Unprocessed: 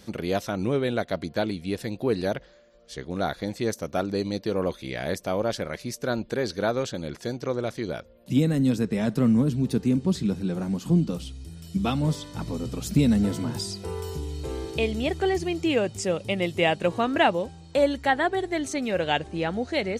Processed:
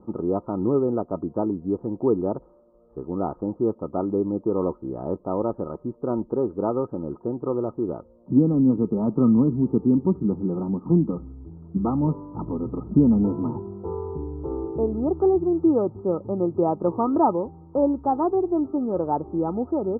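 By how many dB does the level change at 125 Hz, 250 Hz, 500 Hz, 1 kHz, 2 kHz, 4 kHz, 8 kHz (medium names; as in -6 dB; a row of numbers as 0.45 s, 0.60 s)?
0.0 dB, +4.0 dB, +2.0 dB, +1.5 dB, under -25 dB, under -40 dB, under -40 dB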